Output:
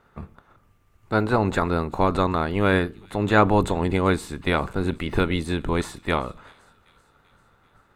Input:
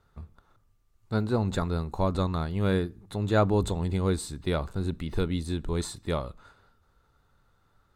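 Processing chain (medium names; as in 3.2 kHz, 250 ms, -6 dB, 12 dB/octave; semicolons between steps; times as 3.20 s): spectral peaks clipped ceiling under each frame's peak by 13 dB; resonant high shelf 3.2 kHz -6.5 dB, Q 1.5; feedback echo behind a high-pass 388 ms, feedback 58%, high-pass 3.2 kHz, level -21 dB; trim +5.5 dB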